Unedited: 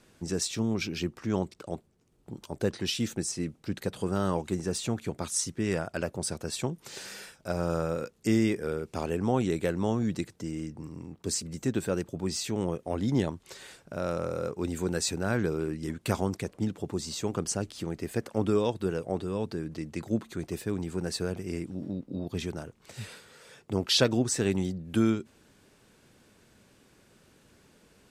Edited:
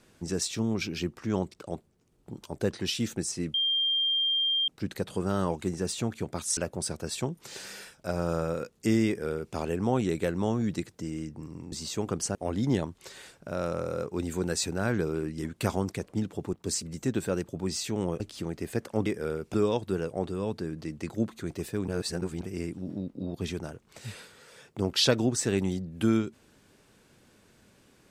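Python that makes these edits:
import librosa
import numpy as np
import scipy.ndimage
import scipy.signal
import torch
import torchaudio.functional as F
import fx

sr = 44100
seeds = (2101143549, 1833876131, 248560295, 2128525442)

y = fx.edit(x, sr, fx.insert_tone(at_s=3.54, length_s=1.14, hz=3190.0, db=-23.5),
    fx.cut(start_s=5.43, length_s=0.55),
    fx.duplicate(start_s=8.48, length_s=0.48, to_s=18.47),
    fx.swap(start_s=11.13, length_s=1.67, other_s=16.98, other_length_s=0.63),
    fx.reverse_span(start_s=20.81, length_s=0.53), tone=tone)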